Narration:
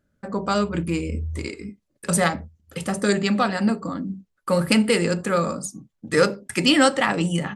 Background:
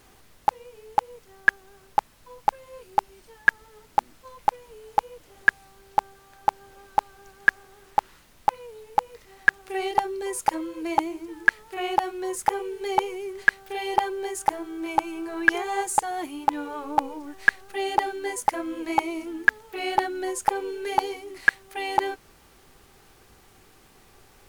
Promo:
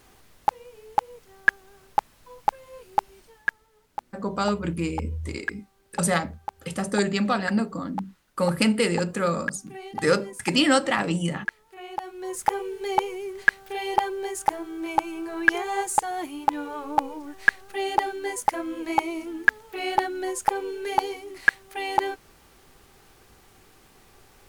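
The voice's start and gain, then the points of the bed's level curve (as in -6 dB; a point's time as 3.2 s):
3.90 s, -3.0 dB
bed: 3.19 s -0.5 dB
3.67 s -11.5 dB
11.88 s -11.5 dB
12.43 s 0 dB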